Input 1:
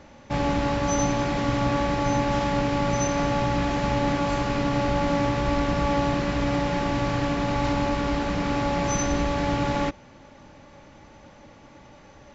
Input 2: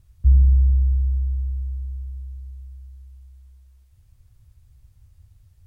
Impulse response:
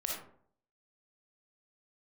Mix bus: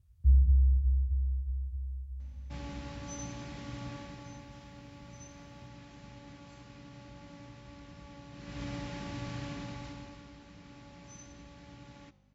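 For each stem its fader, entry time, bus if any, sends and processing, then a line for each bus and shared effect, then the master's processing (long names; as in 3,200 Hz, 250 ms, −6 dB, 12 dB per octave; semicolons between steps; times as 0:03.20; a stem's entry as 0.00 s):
0:03.90 −8.5 dB → 0:04.53 −16.5 dB → 0:08.30 −16.5 dB → 0:08.61 −5 dB → 0:09.56 −5 dB → 0:10.33 −17 dB, 2.20 s, no send, parametric band 700 Hz −10 dB 3 octaves; flanger 0.55 Hz, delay 8.2 ms, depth 9.8 ms, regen −89%; mains hum 50 Hz, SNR 13 dB
−9.5 dB, 0.00 s, no send, flanger 1.6 Hz, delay 2.2 ms, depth 9.4 ms, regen −77%; low-shelf EQ 130 Hz +11 dB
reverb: not used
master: high-pass filter 66 Hz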